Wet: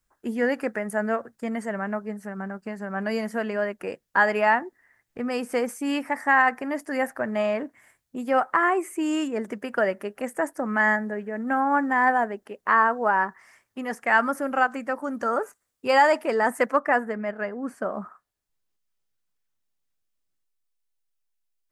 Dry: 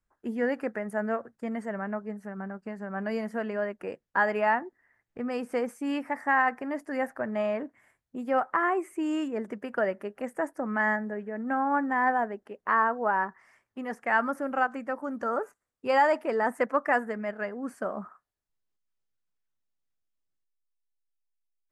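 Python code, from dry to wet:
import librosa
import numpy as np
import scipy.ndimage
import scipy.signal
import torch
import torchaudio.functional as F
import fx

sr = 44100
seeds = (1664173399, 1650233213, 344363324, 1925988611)

y = fx.high_shelf(x, sr, hz=3100.0, db=fx.steps((0.0, 9.5), (16.78, -2.5), (17.93, 3.0)))
y = y * 10.0 ** (3.5 / 20.0)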